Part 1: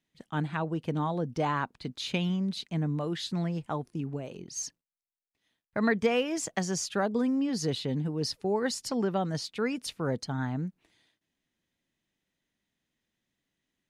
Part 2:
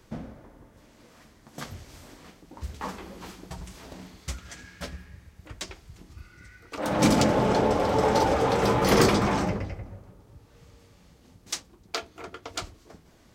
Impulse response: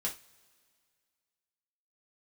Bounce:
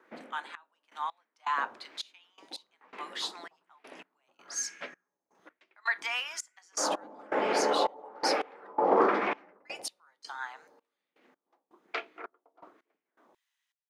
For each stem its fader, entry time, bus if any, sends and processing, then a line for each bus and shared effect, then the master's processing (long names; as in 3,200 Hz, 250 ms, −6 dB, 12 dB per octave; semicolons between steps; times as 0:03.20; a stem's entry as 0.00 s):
0.0 dB, 0.00 s, muted 0:08.67–0:09.65, send −10.5 dB, Butterworth high-pass 880 Hz 36 dB per octave
−4.5 dB, 0.00 s, no send, high-pass filter 290 Hz 24 dB per octave; auto-filter low-pass sine 1.1 Hz 810–2,500 Hz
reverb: on, pre-delay 3 ms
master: gate pattern "xxx..x.." 82 BPM −24 dB